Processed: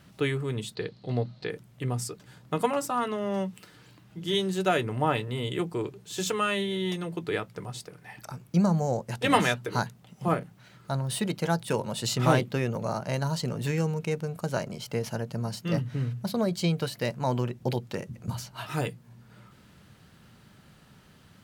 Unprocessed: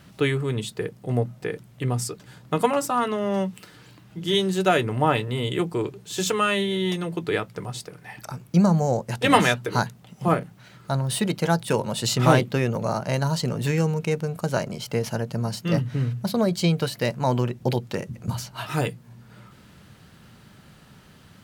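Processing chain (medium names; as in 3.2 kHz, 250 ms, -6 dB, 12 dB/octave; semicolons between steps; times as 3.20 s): 0.75–1.50 s: resonant low-pass 4.2 kHz, resonance Q 9.4; trim -5 dB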